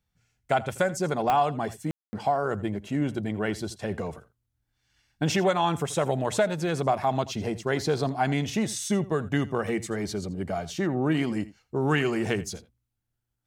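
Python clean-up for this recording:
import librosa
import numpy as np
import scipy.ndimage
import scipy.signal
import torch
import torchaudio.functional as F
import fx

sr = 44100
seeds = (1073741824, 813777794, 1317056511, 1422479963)

y = fx.fix_declick_ar(x, sr, threshold=10.0)
y = fx.fix_ambience(y, sr, seeds[0], print_start_s=12.95, print_end_s=13.45, start_s=1.91, end_s=2.13)
y = fx.fix_echo_inverse(y, sr, delay_ms=83, level_db=-18.0)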